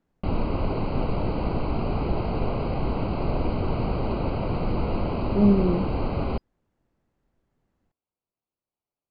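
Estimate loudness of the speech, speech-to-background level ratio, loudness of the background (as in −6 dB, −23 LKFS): −23.0 LKFS, 5.0 dB, −28.0 LKFS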